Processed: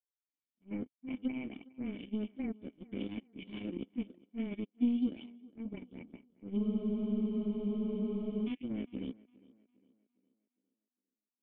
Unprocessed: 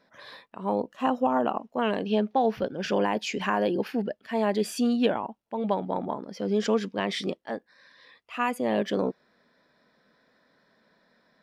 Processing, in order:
every frequency bin delayed by itself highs late, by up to 431 ms
brickwall limiter −19 dBFS, peak gain reduction 6 dB
power curve on the samples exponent 3
formant resonators in series i
tape delay 407 ms, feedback 45%, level −21 dB, low-pass 3,400 Hz
frozen spectrum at 0:06.60, 1.86 s
level +5.5 dB

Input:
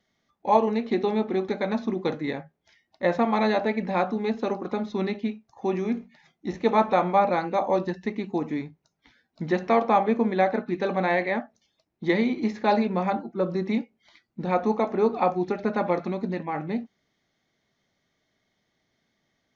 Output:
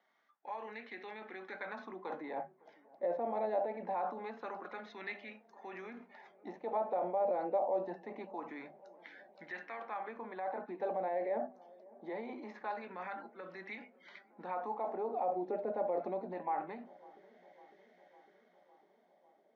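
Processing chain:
high-pass filter 170 Hz 24 dB per octave
parametric band 1,200 Hz −5.5 dB 0.33 octaves
mains-hum notches 50/100/150/200/250 Hz
reversed playback
downward compressor 5 to 1, threshold −32 dBFS, peak gain reduction 16 dB
reversed playback
brickwall limiter −31.5 dBFS, peak gain reduction 10.5 dB
auto-filter band-pass sine 0.24 Hz 580–1,800 Hz
delay with a low-pass on its return 554 ms, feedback 69%, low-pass 1,100 Hz, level −22.5 dB
level +9.5 dB

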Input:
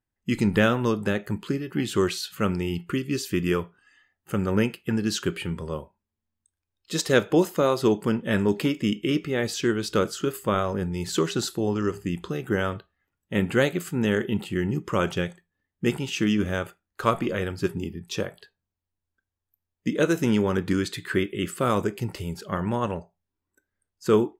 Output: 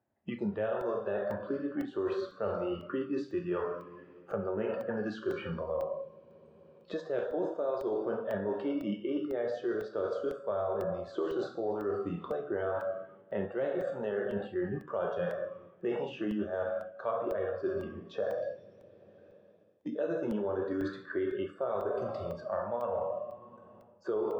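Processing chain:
parametric band 630 Hz +13 dB 0.67 octaves
coupled-rooms reverb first 0.84 s, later 2.7 s, from −18 dB, DRR 1 dB
noise reduction from a noise print of the clip's start 14 dB
high-pass filter 130 Hz 12 dB per octave
head-to-tape spacing loss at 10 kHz 42 dB
reversed playback
downward compressor 6 to 1, threshold −31 dBFS, peak gain reduction 19 dB
reversed playback
regular buffer underruns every 0.50 s, samples 64, zero, from 0:00.81
multiband upward and downward compressor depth 70%

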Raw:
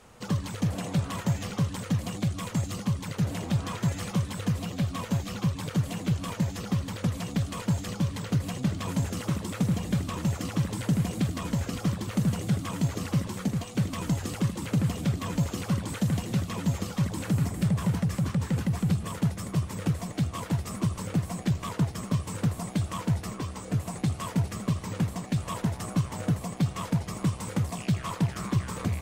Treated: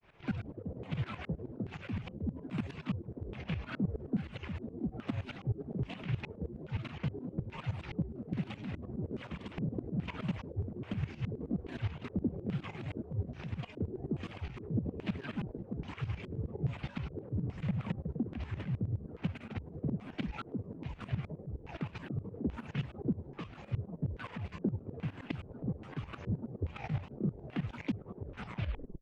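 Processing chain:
turntable brake at the end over 0.74 s
granular cloud, spray 39 ms, pitch spread up and down by 7 semitones
auto-filter low-pass square 1.2 Hz 430–2,600 Hz
shaped tremolo saw up 9.6 Hz, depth 85%
level −5 dB

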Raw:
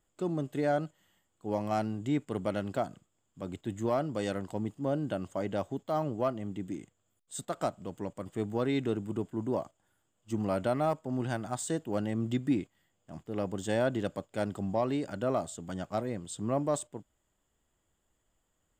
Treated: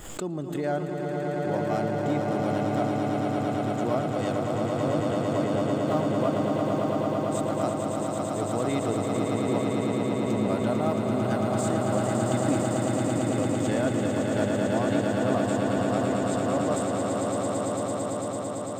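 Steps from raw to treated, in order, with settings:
echo that builds up and dies away 112 ms, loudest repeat 8, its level −5 dB
background raised ahead of every attack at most 64 dB per second

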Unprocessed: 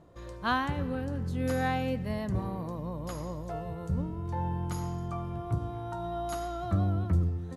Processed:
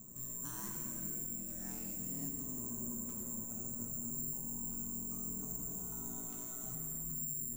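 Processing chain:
head-to-tape spacing loss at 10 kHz 27 dB
compressor whose output falls as the input rises −34 dBFS
parametric band 660 Hz −15 dB 2.3 octaves
bad sample-rate conversion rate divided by 6×, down none, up zero stuff
brickwall limiter −30.5 dBFS, peak gain reduction 19 dB
ring modulation 62 Hz
hollow resonant body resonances 230/1,000/2,600 Hz, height 7 dB, ringing for 25 ms
reverb with rising layers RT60 2 s, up +7 semitones, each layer −8 dB, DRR 1 dB
level +1 dB

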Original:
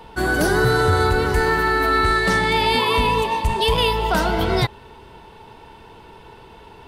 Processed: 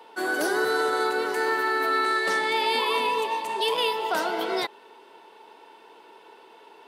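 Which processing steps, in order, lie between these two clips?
high-pass filter 310 Hz 24 dB per octave
level −5.5 dB

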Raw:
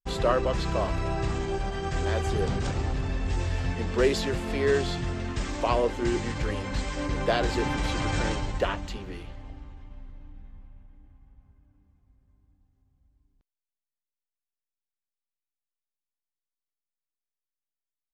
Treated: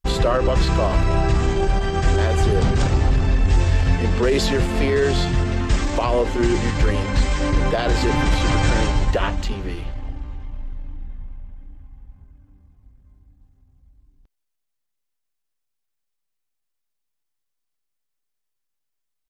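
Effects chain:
brickwall limiter −19 dBFS, peak gain reduction 7.5 dB
tempo change 0.94×
low-shelf EQ 72 Hz +6.5 dB
level +8.5 dB

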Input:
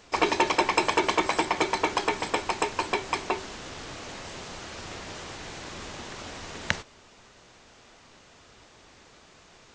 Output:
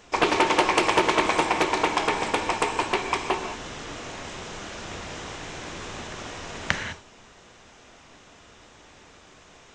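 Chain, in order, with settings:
parametric band 4,500 Hz −6.5 dB 0.26 octaves
reverb whose tail is shaped and stops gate 230 ms flat, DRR 4.5 dB
highs frequency-modulated by the lows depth 0.36 ms
level +2 dB

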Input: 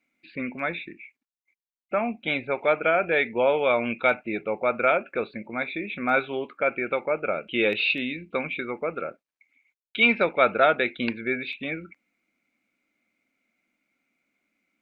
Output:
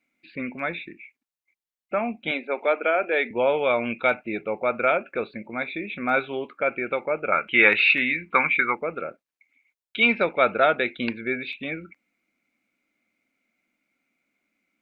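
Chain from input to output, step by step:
0:02.31–0:03.31: elliptic high-pass filter 220 Hz, stop band 40 dB
0:07.32–0:08.75: flat-topped bell 1,400 Hz +14 dB

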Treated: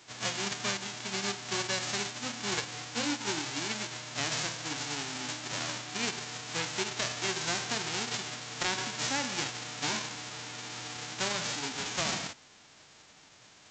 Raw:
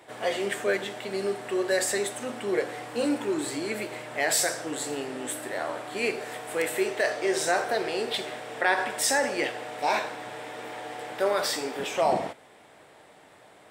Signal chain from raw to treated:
spectral envelope flattened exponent 0.1
downward compressor 3 to 1, threshold −27 dBFS, peak gain reduction 7 dB
G.722 64 kbit/s 16,000 Hz

